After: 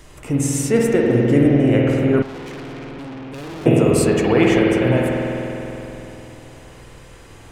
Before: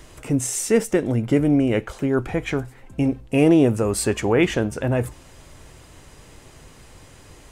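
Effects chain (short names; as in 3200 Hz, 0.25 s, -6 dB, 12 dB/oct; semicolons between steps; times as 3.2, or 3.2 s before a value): spring tank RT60 3.5 s, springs 49 ms, chirp 50 ms, DRR -3 dB; 2.22–3.66 tube stage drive 31 dB, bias 0.7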